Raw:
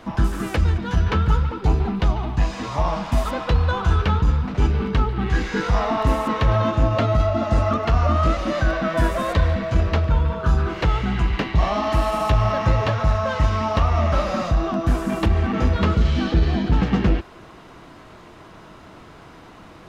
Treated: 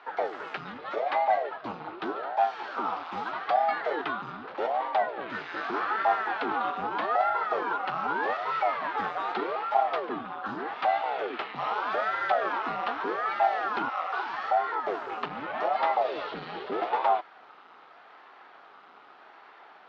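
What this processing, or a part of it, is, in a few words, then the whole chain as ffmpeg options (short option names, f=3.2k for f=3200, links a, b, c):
voice changer toy: -filter_complex "[0:a]asettb=1/sr,asplit=3[a][b][c];[a]atrim=end=13.894[d];[b]atrim=start=13.89:end=14.44,asetpts=PTS-STARTPTS,afade=t=in:d=0.004:c=qsin,afade=t=out:st=0.546:d=0.004:c=qsin,highpass=550[e];[c]atrim=start=14.436[f];[d][e]acrossfade=d=0.004:c1=hsin:c2=qsin[g];[g][f]acrossfade=d=0.004:c1=qsin:c2=hsin,aeval=exprs='val(0)*sin(2*PI*410*n/s+410*0.8/0.82*sin(2*PI*0.82*n/s))':c=same,highpass=510,equalizer=f=540:t=q:w=4:g=-6,equalizer=f=780:t=q:w=4:g=5,equalizer=f=1.3k:t=q:w=4:g=7,lowpass=f=4.2k:w=0.5412,lowpass=f=4.2k:w=1.3066,volume=-5.5dB"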